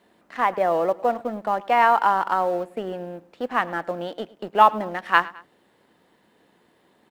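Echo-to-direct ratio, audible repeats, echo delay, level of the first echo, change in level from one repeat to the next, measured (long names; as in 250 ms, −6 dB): −20.0 dB, 2, 106 ms, −21.0 dB, −6.0 dB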